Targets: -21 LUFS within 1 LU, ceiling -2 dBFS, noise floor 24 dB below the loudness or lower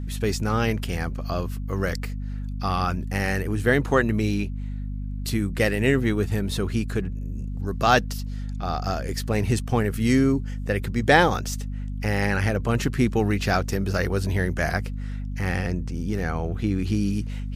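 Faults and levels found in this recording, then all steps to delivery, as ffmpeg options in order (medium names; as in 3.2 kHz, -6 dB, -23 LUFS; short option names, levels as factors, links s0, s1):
hum 50 Hz; highest harmonic 250 Hz; hum level -28 dBFS; loudness -25.0 LUFS; peak level -4.0 dBFS; loudness target -21.0 LUFS
-> -af "bandreject=f=50:t=h:w=6,bandreject=f=100:t=h:w=6,bandreject=f=150:t=h:w=6,bandreject=f=200:t=h:w=6,bandreject=f=250:t=h:w=6"
-af "volume=1.58,alimiter=limit=0.794:level=0:latency=1"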